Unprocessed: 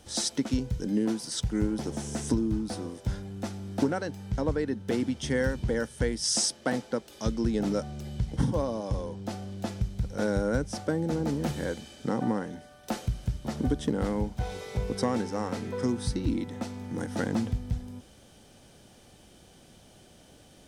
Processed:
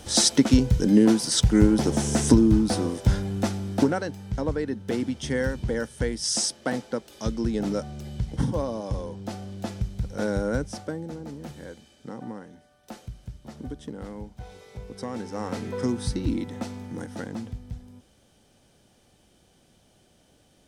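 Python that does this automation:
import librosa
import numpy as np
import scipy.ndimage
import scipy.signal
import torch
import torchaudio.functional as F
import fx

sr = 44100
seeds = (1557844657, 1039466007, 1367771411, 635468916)

y = fx.gain(x, sr, db=fx.line((3.36, 10.0), (4.22, 1.0), (10.63, 1.0), (11.21, -9.0), (14.92, -9.0), (15.54, 2.0), (16.74, 2.0), (17.29, -6.0)))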